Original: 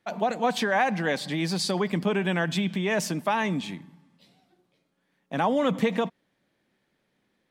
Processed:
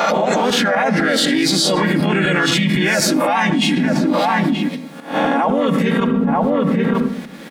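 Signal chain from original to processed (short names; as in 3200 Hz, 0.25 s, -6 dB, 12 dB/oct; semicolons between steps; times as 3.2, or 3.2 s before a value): spectral swells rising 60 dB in 0.42 s; steep high-pass 180 Hz 48 dB/oct; notch 3000 Hz, Q 21; comb 3.6 ms, depth 66%; spectral noise reduction 7 dB; tremolo saw up 4 Hz, depth 70%; harmoniser -3 st -3 dB, +4 st -17 dB; outdoor echo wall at 160 m, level -25 dB; on a send at -16 dB: reverb RT60 0.50 s, pre-delay 77 ms; on the sum: fast leveller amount 100%; gain +2 dB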